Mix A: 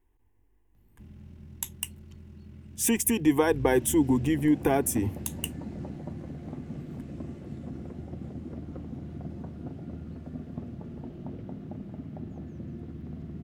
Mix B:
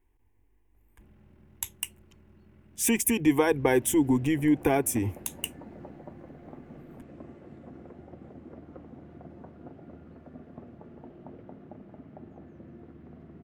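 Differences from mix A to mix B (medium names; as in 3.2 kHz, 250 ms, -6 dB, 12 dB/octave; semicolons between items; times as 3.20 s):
speech: add peaking EQ 2.3 kHz +6 dB 0.26 oct; background: add three-band isolator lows -12 dB, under 340 Hz, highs -14 dB, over 2.4 kHz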